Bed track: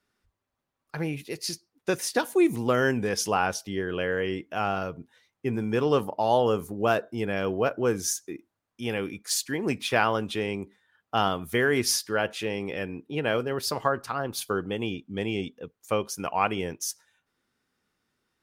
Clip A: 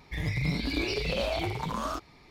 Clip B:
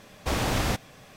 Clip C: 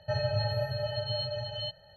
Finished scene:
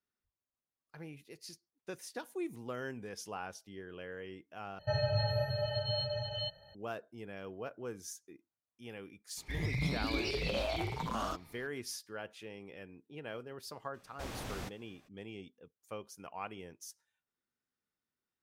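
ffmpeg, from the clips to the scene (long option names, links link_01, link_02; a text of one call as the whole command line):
ffmpeg -i bed.wav -i cue0.wav -i cue1.wav -i cue2.wav -filter_complex "[0:a]volume=-17.5dB[link_01];[3:a]acontrast=81[link_02];[link_01]asplit=2[link_03][link_04];[link_03]atrim=end=4.794[link_05];[link_02]atrim=end=1.96,asetpts=PTS-STARTPTS,volume=-9dB[link_06];[link_04]atrim=start=6.746[link_07];[1:a]atrim=end=2.3,asetpts=PTS-STARTPTS,volume=-5dB,afade=type=in:duration=0.004:curve=hsin,afade=type=out:start_time=2.296:duration=0.004:curve=hsin,adelay=9370[link_08];[2:a]atrim=end=1.16,asetpts=PTS-STARTPTS,volume=-16.5dB,afade=type=in:duration=0.02,afade=type=out:start_time=1.14:duration=0.02,adelay=13930[link_09];[link_05][link_06]acrossfade=duration=0.004:curve1=hsin:curve2=hsin[link_10];[link_10][link_07]acrossfade=duration=0.004:curve1=hsin:curve2=hsin[link_11];[link_11][link_08][link_09]amix=inputs=3:normalize=0" out.wav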